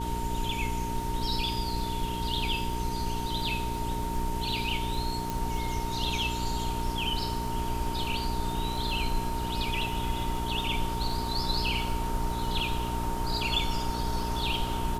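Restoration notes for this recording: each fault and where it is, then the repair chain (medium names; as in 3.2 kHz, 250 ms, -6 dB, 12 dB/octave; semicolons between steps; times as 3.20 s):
crackle 25 per s -36 dBFS
hum 60 Hz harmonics 7 -35 dBFS
whine 920 Hz -34 dBFS
5.30 s: pop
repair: de-click; de-hum 60 Hz, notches 7; band-stop 920 Hz, Q 30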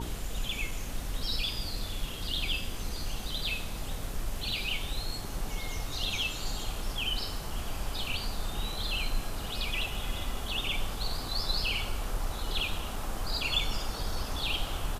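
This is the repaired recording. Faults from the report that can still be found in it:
nothing left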